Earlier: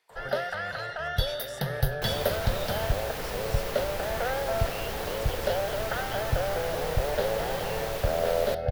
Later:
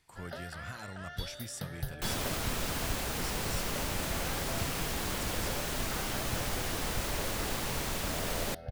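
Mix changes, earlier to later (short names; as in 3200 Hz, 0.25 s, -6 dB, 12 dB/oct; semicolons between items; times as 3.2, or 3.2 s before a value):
speech: remove HPF 440 Hz 12 dB/oct; first sound -12.0 dB; master: add graphic EQ 250/500/8000 Hz +6/-7/+7 dB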